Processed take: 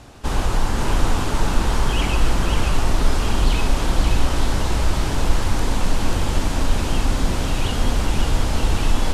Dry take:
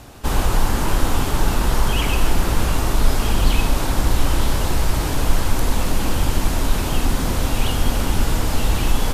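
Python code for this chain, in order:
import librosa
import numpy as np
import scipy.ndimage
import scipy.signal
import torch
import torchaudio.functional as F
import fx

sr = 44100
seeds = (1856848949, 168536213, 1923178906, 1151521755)

y = scipy.signal.sosfilt(scipy.signal.butter(2, 8600.0, 'lowpass', fs=sr, output='sos'), x)
y = y + 10.0 ** (-4.5 / 20.0) * np.pad(y, (int(537 * sr / 1000.0), 0))[:len(y)]
y = y * 10.0 ** (-2.0 / 20.0)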